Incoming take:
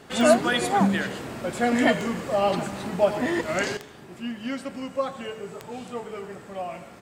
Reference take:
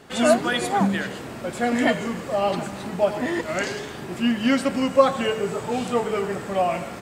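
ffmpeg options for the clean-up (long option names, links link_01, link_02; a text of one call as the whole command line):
ffmpeg -i in.wav -af "adeclick=threshold=4,asetnsamples=nb_out_samples=441:pad=0,asendcmd='3.77 volume volume 11dB',volume=0dB" out.wav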